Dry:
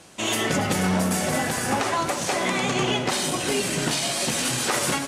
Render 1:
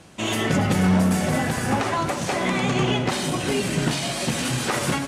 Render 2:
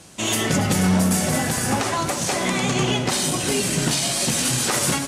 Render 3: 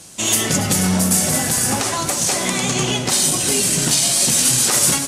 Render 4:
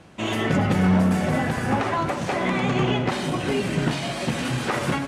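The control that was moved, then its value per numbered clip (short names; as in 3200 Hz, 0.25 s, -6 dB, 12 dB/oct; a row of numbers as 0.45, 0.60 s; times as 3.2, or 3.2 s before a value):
tone controls, treble: -5, +5, +14, -15 dB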